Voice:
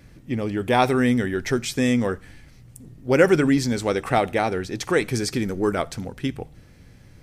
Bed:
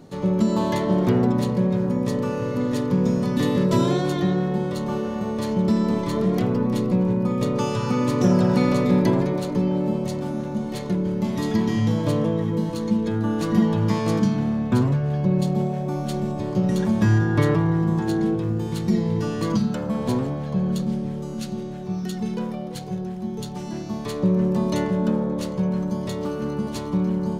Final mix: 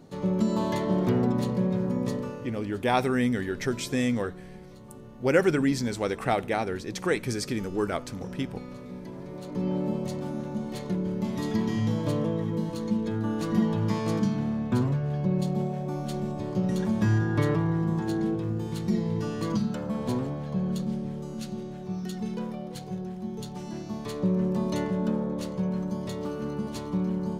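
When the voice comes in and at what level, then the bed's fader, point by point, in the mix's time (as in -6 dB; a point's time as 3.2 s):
2.15 s, -5.5 dB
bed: 2.09 s -5 dB
2.75 s -22 dB
9.11 s -22 dB
9.69 s -5.5 dB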